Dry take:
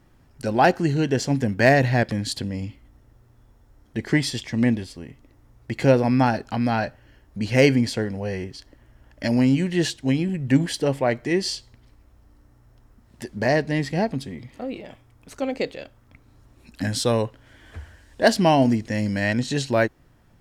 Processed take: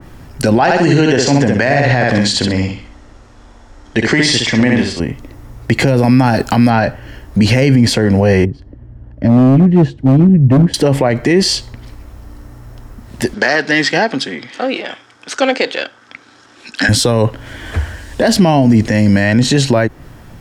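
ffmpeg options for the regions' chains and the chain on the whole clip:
ffmpeg -i in.wav -filter_complex "[0:a]asettb=1/sr,asplit=3[link_01][link_02][link_03];[link_01]atrim=end=0.604[link_04];[link_02]atrim=start=0.6:end=5,asetpts=PTS-STARTPTS,afade=type=in:duration=0.004:curve=qsin,afade=type=out:start_time=4.396:duration=0.004:curve=qsin,lowpass=frequency=7900:width=0.5412,lowpass=frequency=7900:width=1.3066,equalizer=frequency=110:width=0.34:gain=-10,aecho=1:1:64|128|192|256:0.631|0.177|0.0495|0.0139,atrim=end_sample=194040[link_05];[link_03]atrim=start=4.996[link_06];[link_04][link_05]acrossfade=duration=0.004:curve1=hsin:curve2=qsin[link_07];[link_07][link_06]acrossfade=duration=0.004:curve1=qsin:curve2=hsin,asettb=1/sr,asplit=3[link_08][link_09][link_10];[link_08]atrim=end=5.874[link_11];[link_09]atrim=start=5.87:end=6.7,asetpts=PTS-STARTPTS,afade=type=in:duration=0.004:curve=qsin,afade=type=out:start_time=0.826:duration=0.004:curve=qsin,aemphasis=mode=production:type=50kf,bandreject=frequency=5900:width=20[link_12];[link_10]atrim=start=6.696[link_13];[link_11][link_12]acrossfade=duration=0.004:curve1=hsin:curve2=qsin[link_14];[link_14][link_13]acrossfade=duration=0.004:curve1=qsin:curve2=hsin,asettb=1/sr,asplit=3[link_15][link_16][link_17];[link_15]atrim=end=8.454[link_18];[link_16]atrim=start=8.45:end=10.74,asetpts=PTS-STARTPTS,afade=type=in:duration=0.004:curve=qsin,afade=type=out:start_time=2.286:duration=0.004:curve=qsin,bandpass=frequency=110:width_type=q:width=0.68,asoftclip=type=hard:threshold=-22.5dB[link_19];[link_17]atrim=start=10.736[link_20];[link_18][link_19]acrossfade=duration=0.004:curve1=hsin:curve2=qsin[link_21];[link_21][link_20]acrossfade=duration=0.004:curve1=qsin:curve2=hsin,asettb=1/sr,asplit=3[link_22][link_23][link_24];[link_22]atrim=end=13.344[link_25];[link_23]atrim=start=13.34:end=16.89,asetpts=PTS-STARTPTS,afade=type=in:duration=0.004:curve=qsin,afade=type=out:start_time=3.546:duration=0.004:curve=qsin,aeval=exprs='if(lt(val(0),0),0.708*val(0),val(0))':channel_layout=same,highpass=420,equalizer=frequency=430:width_type=q:width=4:gain=-3,equalizer=frequency=610:width_type=q:width=4:gain=-6,equalizer=frequency=1000:width_type=q:width=4:gain=-4,equalizer=frequency=1500:width_type=q:width=4:gain=9,equalizer=frequency=3300:width_type=q:width=4:gain=6,equalizer=frequency=5200:width_type=q:width=4:gain=5,lowpass=frequency=8200:width=0.5412,lowpass=frequency=8200:width=1.3066,bandreject=frequency=1400:width=26[link_26];[link_24]atrim=start=16.886[link_27];[link_25][link_26]acrossfade=duration=0.004:curve1=hsin:curve2=qsin[link_28];[link_28][link_27]acrossfade=duration=0.004:curve1=qsin:curve2=hsin,acrossover=split=190[link_29][link_30];[link_30]acompressor=threshold=-20dB:ratio=6[link_31];[link_29][link_31]amix=inputs=2:normalize=0,alimiter=level_in=21.5dB:limit=-1dB:release=50:level=0:latency=1,adynamicequalizer=threshold=0.0355:dfrequency=2500:dqfactor=0.7:tfrequency=2500:tqfactor=0.7:attack=5:release=100:ratio=0.375:range=2:mode=cutabove:tftype=highshelf,volume=-1dB" out.wav

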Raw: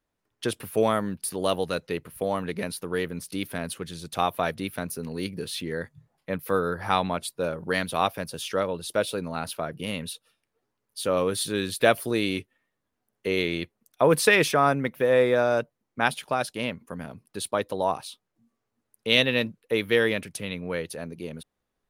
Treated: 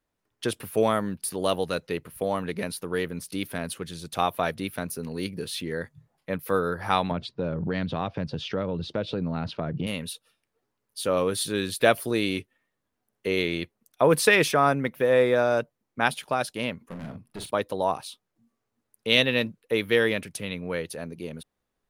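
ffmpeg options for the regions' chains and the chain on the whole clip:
ffmpeg -i in.wav -filter_complex "[0:a]asettb=1/sr,asplit=3[link_01][link_02][link_03];[link_01]atrim=end=7.114[link_04];[link_02]atrim=start=7.11:end=9.87,asetpts=PTS-STARTPTS,afade=type=in:duration=0.004:curve=qsin,afade=type=out:start_time=2.756:duration=0.004:curve=qsin,lowpass=frequency=4700:width=0.5412,lowpass=frequency=4700:width=1.3066,equalizer=frequency=120:width=0.37:gain=14.5,acompressor=threshold=-26dB:ratio=3:attack=3.2:release=140:knee=1:detection=peak[link_05];[link_03]atrim=start=9.866[link_06];[link_04][link_05]acrossfade=duration=0.004:curve1=hsin:curve2=qsin[link_07];[link_07][link_06]acrossfade=duration=0.004:curve1=qsin:curve2=hsin,asettb=1/sr,asplit=3[link_08][link_09][link_10];[link_08]atrim=end=16.874[link_11];[link_09]atrim=start=16.87:end=17.51,asetpts=PTS-STARTPTS,afade=type=in:duration=0.004:curve=qsin,afade=type=out:start_time=0.636:duration=0.004:curve=qsin,bass=frequency=250:gain=5,treble=frequency=4000:gain=-7,volume=33dB,asoftclip=hard,volume=-33dB,asplit=2[link_12][link_13];[link_13]adelay=43,volume=-8dB[link_14];[link_12][link_14]amix=inputs=2:normalize=0,atrim=end_sample=28224[link_15];[link_10]atrim=start=17.506[link_16];[link_11][link_15]acrossfade=duration=0.004:curve1=hsin:curve2=qsin[link_17];[link_17][link_16]acrossfade=duration=0.004:curve1=qsin:curve2=hsin" out.wav

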